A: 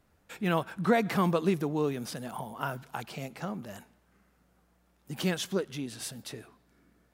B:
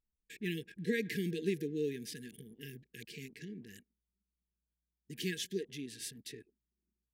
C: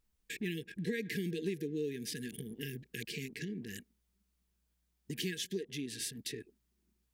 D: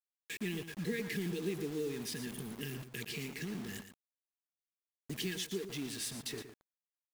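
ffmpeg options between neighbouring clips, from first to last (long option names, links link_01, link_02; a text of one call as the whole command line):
ffmpeg -i in.wav -af "afftfilt=real='re*(1-between(b*sr/4096,480,1600))':imag='im*(1-between(b*sr/4096,480,1600))':win_size=4096:overlap=0.75,anlmdn=0.00631,bass=frequency=250:gain=-6,treble=frequency=4000:gain=0,volume=-4.5dB" out.wav
ffmpeg -i in.wav -af "acompressor=threshold=-50dB:ratio=2.5,volume=10.5dB" out.wav
ffmpeg -i in.wav -af "aeval=exprs='val(0)+0.5*0.00335*sgn(val(0))':channel_layout=same,acrusher=bits=7:mix=0:aa=0.000001,aecho=1:1:116:0.299,volume=-1.5dB" out.wav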